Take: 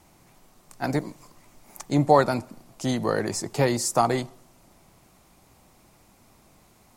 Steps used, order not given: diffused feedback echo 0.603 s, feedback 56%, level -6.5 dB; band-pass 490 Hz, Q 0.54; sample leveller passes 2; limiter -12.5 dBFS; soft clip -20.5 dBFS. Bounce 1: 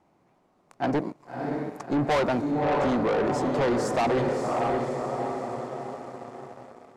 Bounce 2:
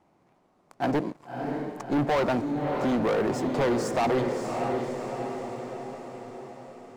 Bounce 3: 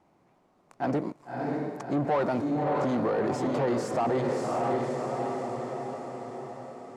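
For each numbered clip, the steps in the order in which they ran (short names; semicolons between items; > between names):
diffused feedback echo > sample leveller > band-pass > soft clip > limiter; band-pass > limiter > sample leveller > diffused feedback echo > soft clip; sample leveller > diffused feedback echo > limiter > soft clip > band-pass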